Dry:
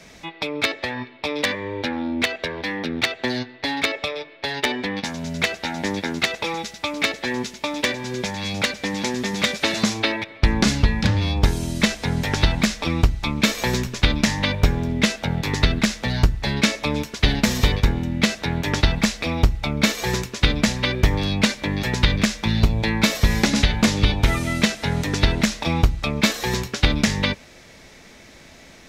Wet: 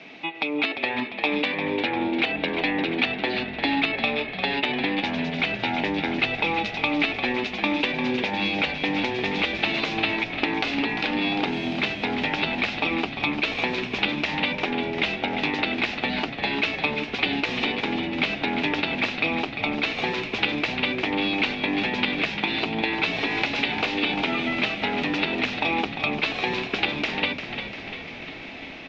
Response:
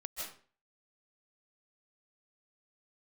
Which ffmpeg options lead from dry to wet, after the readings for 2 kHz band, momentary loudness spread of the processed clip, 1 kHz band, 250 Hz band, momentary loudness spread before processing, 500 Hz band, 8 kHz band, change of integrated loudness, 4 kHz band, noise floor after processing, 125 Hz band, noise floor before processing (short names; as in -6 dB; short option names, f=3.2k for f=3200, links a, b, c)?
+0.5 dB, 3 LU, +1.0 dB, -3.5 dB, 7 LU, -1.5 dB, under -20 dB, -2.5 dB, -2.5 dB, -36 dBFS, -15.0 dB, -46 dBFS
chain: -filter_complex "[0:a]bandreject=f=550:w=16,afftfilt=real='re*lt(hypot(re,im),0.447)':imag='im*lt(hypot(re,im),0.447)':win_size=1024:overlap=0.75,acompressor=threshold=-29dB:ratio=12,equalizer=f=830:w=0.81:g=-5,dynaudnorm=f=340:g=3:m=5dB,highpass=260,equalizer=f=280:t=q:w=4:g=7,equalizer=f=780:t=q:w=4:g=8,equalizer=f=1.7k:t=q:w=4:g=-4,equalizer=f=2.6k:t=q:w=4:g=8,lowpass=f=3.6k:w=0.5412,lowpass=f=3.6k:w=1.3066,asplit=9[a][b][c][d][e][f][g][h][i];[b]adelay=348,afreqshift=-45,volume=-8.5dB[j];[c]adelay=696,afreqshift=-90,volume=-12.9dB[k];[d]adelay=1044,afreqshift=-135,volume=-17.4dB[l];[e]adelay=1392,afreqshift=-180,volume=-21.8dB[m];[f]adelay=1740,afreqshift=-225,volume=-26.2dB[n];[g]adelay=2088,afreqshift=-270,volume=-30.7dB[o];[h]adelay=2436,afreqshift=-315,volume=-35.1dB[p];[i]adelay=2784,afreqshift=-360,volume=-39.6dB[q];[a][j][k][l][m][n][o][p][q]amix=inputs=9:normalize=0,volume=3dB"